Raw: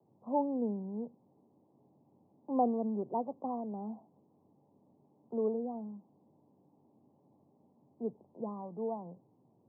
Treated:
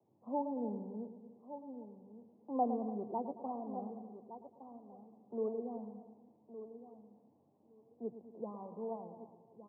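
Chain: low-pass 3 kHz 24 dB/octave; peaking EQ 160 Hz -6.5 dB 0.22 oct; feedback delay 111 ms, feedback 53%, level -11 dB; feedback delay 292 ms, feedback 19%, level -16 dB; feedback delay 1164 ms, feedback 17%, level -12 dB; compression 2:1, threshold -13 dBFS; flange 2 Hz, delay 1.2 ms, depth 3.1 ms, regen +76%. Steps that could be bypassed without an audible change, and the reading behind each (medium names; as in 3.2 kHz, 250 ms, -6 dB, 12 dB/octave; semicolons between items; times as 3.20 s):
low-pass 3 kHz: input has nothing above 1.1 kHz; compression, threshold -13 dBFS: peak at its input -17.5 dBFS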